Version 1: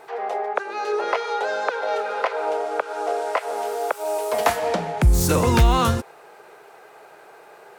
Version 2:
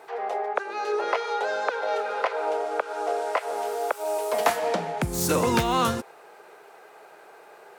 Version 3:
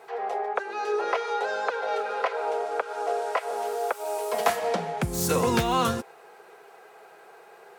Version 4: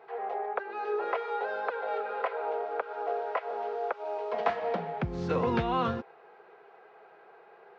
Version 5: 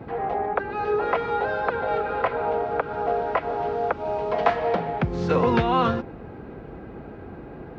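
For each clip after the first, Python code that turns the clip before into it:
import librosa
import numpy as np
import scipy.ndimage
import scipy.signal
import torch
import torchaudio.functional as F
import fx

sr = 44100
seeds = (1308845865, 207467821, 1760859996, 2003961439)

y1 = scipy.signal.sosfilt(scipy.signal.butter(2, 170.0, 'highpass', fs=sr, output='sos'), x)
y1 = y1 * librosa.db_to_amplitude(-2.5)
y2 = fx.notch_comb(y1, sr, f0_hz=300.0)
y3 = scipy.ndimage.gaussian_filter1d(y2, 2.6, mode='constant')
y3 = y3 * librosa.db_to_amplitude(-4.0)
y4 = fx.dmg_noise_band(y3, sr, seeds[0], low_hz=36.0, high_hz=450.0, level_db=-47.0)
y4 = y4 * librosa.db_to_amplitude(7.5)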